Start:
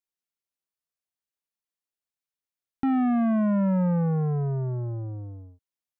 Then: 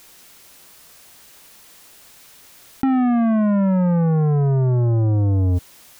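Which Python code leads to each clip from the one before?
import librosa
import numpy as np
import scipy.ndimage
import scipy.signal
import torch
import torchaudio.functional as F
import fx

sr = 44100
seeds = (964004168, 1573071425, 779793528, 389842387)

y = fx.env_flatten(x, sr, amount_pct=100)
y = F.gain(torch.from_numpy(y), 5.5).numpy()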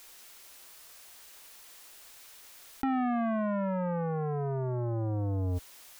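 y = fx.peak_eq(x, sr, hz=150.0, db=-12.0, octaves=2.1)
y = F.gain(torch.from_numpy(y), -5.0).numpy()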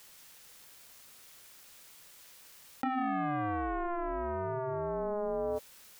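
y = x * np.sin(2.0 * np.pi * 520.0 * np.arange(len(x)) / sr)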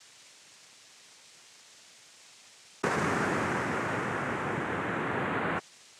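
y = fx.noise_vocoder(x, sr, seeds[0], bands=3)
y = F.gain(torch.from_numpy(y), 3.0).numpy()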